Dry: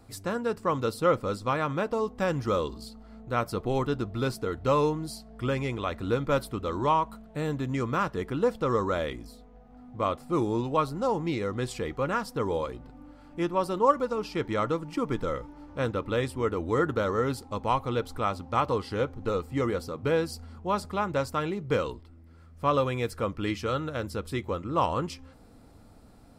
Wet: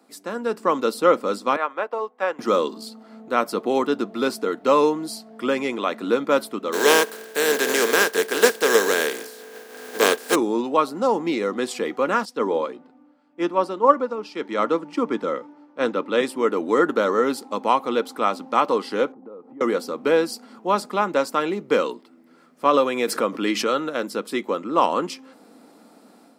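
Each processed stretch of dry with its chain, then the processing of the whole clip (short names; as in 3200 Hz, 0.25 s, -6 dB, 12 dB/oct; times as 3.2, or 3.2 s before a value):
1.56–2.39 three-band isolator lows -21 dB, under 440 Hz, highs -15 dB, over 2900 Hz + upward expander, over -49 dBFS
6.72–10.34 spectral contrast lowered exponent 0.3 + small resonant body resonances 440/1600 Hz, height 17 dB
12.25–16.21 air absorption 52 m + three-band expander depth 70%
19.12–19.61 Chebyshev low-pass 790 Hz + compressor 16:1, threshold -42 dBFS
22.65–23.79 expander -41 dBFS + backwards sustainer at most 58 dB/s
whole clip: steep high-pass 210 Hz 36 dB/oct; AGC gain up to 7.5 dB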